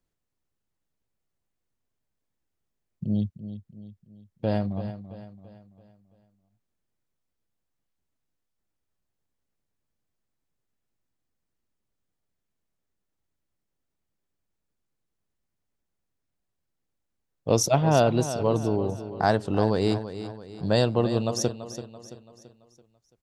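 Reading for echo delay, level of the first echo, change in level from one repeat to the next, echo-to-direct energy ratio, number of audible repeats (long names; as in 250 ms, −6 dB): 335 ms, −12.0 dB, −7.0 dB, −11.0 dB, 4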